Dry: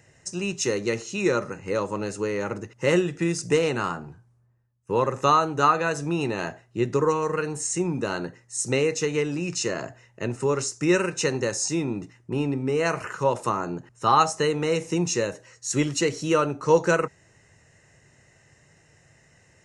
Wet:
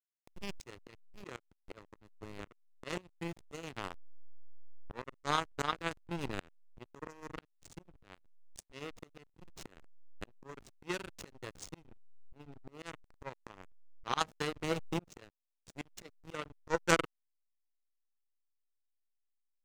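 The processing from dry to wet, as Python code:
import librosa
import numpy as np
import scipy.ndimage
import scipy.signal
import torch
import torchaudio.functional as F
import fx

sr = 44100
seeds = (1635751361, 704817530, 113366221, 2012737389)

y = fx.power_curve(x, sr, exponent=3.0)
y = fx.backlash(y, sr, play_db=-46.0)
y = fx.auto_swell(y, sr, attack_ms=728.0)
y = y * librosa.db_to_amplitude(14.5)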